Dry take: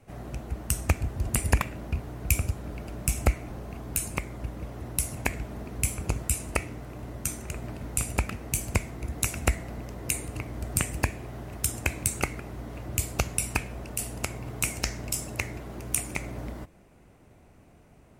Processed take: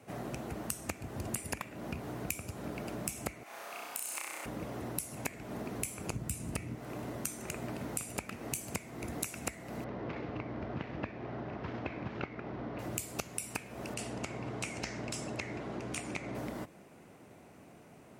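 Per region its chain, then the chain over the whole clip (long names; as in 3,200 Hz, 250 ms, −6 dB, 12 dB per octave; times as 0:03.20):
0:03.43–0:04.46: high-pass filter 970 Hz + downward compressor, threshold −35 dBFS + flutter between parallel walls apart 5.5 metres, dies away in 1 s
0:06.13–0:06.75: hard clipping −16 dBFS + bass and treble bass +14 dB, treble 0 dB
0:09.84–0:12.79: variable-slope delta modulation 32 kbit/s + low-pass filter 2,000 Hz
0:13.94–0:16.35: hard clipping −21.5 dBFS + high-frequency loss of the air 96 metres
whole clip: high-pass filter 160 Hz 12 dB per octave; downward compressor 6 to 1, threshold −38 dBFS; level +3 dB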